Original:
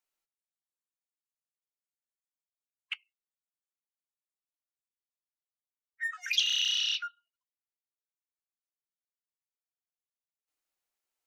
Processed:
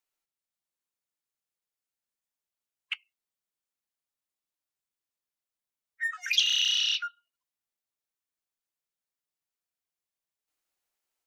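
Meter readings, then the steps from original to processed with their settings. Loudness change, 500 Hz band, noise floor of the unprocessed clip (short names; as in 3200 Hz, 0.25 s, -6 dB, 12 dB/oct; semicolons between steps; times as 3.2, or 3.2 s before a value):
+3.0 dB, n/a, under -85 dBFS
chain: AGC gain up to 3 dB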